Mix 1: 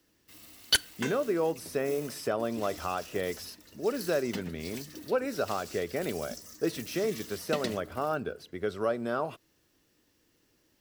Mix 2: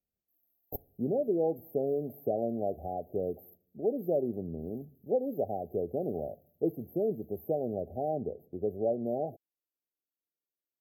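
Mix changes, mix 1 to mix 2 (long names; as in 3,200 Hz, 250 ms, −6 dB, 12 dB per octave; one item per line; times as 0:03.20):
background: add resonant band-pass 6,400 Hz, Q 2.7
master: add linear-phase brick-wall band-stop 820–12,000 Hz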